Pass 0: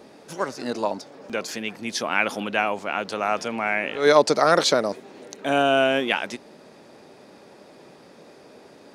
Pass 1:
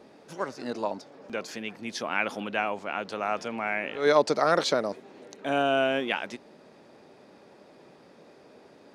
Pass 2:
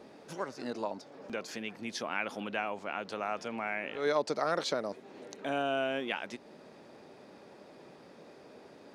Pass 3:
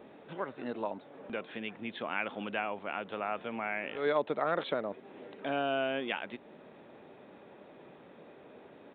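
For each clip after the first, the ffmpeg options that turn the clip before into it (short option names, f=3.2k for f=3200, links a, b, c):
-af "highshelf=f=6.1k:g=-8,volume=-5dB"
-af "acompressor=threshold=-41dB:ratio=1.5"
-af "aresample=8000,aresample=44100"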